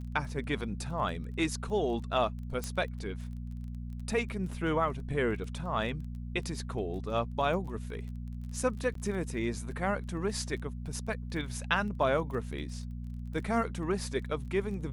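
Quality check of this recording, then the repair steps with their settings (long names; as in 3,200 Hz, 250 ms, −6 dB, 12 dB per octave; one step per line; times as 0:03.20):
surface crackle 20 per second −41 dBFS
mains hum 60 Hz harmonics 4 −39 dBFS
0:02.64: click −20 dBFS
0:08.94–0:08.95: drop-out 13 ms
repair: click removal
hum removal 60 Hz, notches 4
repair the gap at 0:08.94, 13 ms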